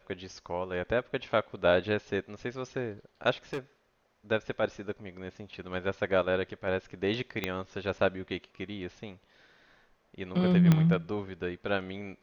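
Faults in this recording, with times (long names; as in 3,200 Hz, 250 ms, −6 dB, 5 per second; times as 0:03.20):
0:03.53–0:03.59: clipping −30 dBFS
0:07.44: click −15 dBFS
0:10.72: click −11 dBFS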